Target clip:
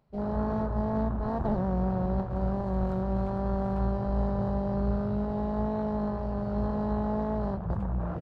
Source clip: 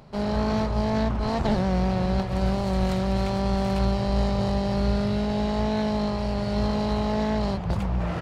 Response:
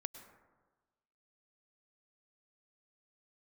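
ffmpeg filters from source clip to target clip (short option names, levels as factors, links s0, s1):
-filter_complex "[0:a]aresample=32000,aresample=44100,asplit=2[s0][s1];[1:a]atrim=start_sample=2205,lowpass=3700[s2];[s1][s2]afir=irnorm=-1:irlink=0,volume=0.668[s3];[s0][s3]amix=inputs=2:normalize=0,afwtdn=0.0398,volume=0.398"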